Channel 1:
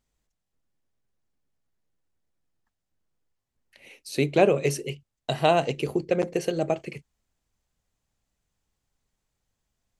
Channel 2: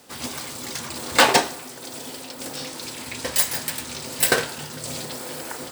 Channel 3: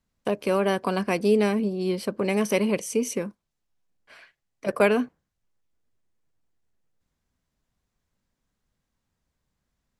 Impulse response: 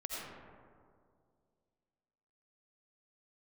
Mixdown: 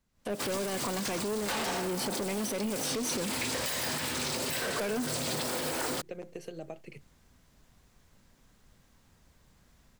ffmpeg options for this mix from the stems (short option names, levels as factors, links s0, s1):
-filter_complex "[0:a]acompressor=threshold=0.0355:ratio=4,volume=0.335[s0];[1:a]adelay=300,volume=0.841,asplit=2[s1][s2];[s2]volume=0.501[s3];[2:a]volume=1[s4];[s1][s4]amix=inputs=2:normalize=0,dynaudnorm=f=120:g=3:m=6.31,alimiter=limit=0.376:level=0:latency=1:release=264,volume=1[s5];[3:a]atrim=start_sample=2205[s6];[s3][s6]afir=irnorm=-1:irlink=0[s7];[s0][s5][s7]amix=inputs=3:normalize=0,asoftclip=type=tanh:threshold=0.0944,acrossover=split=120|5400[s8][s9][s10];[s8]acompressor=threshold=0.00447:ratio=4[s11];[s9]acompressor=threshold=0.0447:ratio=4[s12];[s10]acompressor=threshold=0.0224:ratio=4[s13];[s11][s12][s13]amix=inputs=3:normalize=0,alimiter=limit=0.0668:level=0:latency=1:release=66"